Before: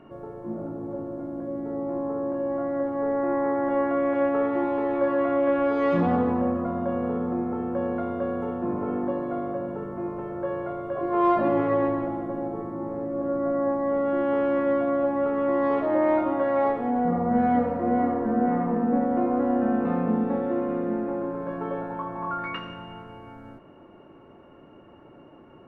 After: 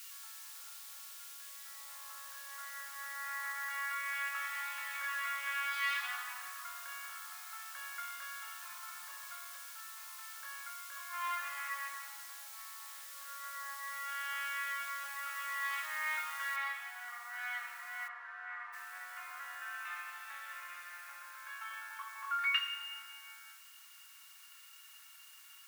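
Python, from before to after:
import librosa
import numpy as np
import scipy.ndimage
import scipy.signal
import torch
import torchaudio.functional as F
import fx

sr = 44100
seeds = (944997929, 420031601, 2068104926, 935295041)

y = fx.resample_linear(x, sr, factor=3, at=(2.61, 3.01))
y = fx.lowpass(y, sr, hz=1800.0, slope=6, at=(8.78, 12.59))
y = fx.noise_floor_step(y, sr, seeds[0], at_s=16.56, before_db=-59, after_db=-67, tilt_db=0.0)
y = fx.lowpass(y, sr, hz=2200.0, slope=12, at=(18.07, 18.72), fade=0.02)
y = scipy.signal.sosfilt(scipy.signal.bessel(6, 2600.0, 'highpass', norm='mag', fs=sr, output='sos'), y)
y = y * librosa.db_to_amplitude(9.5)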